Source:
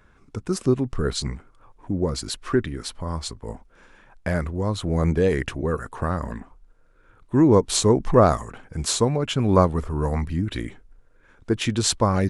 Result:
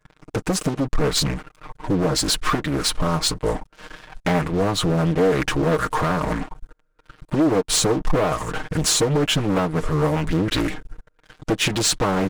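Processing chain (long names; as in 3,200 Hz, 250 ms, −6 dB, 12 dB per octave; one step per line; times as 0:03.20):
downward compressor 16 to 1, threshold −26 dBFS, peak gain reduction 17 dB
dynamic equaliser 110 Hz, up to −7 dB, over −45 dBFS, Q 1.3
leveller curve on the samples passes 5
comb filter 6.5 ms, depth 81%
highs frequency-modulated by the lows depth 0.77 ms
level −4.5 dB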